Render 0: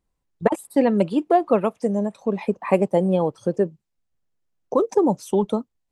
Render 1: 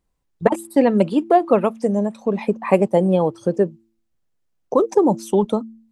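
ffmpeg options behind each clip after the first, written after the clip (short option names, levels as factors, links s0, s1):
-af "bandreject=f=112:t=h:w=4,bandreject=f=224:t=h:w=4,bandreject=f=336:t=h:w=4,volume=1.41"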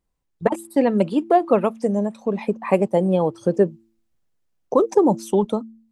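-af "dynaudnorm=f=110:g=11:m=3.76,volume=0.668"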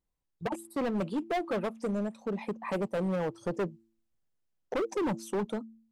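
-af "asoftclip=type=hard:threshold=0.119,volume=0.376"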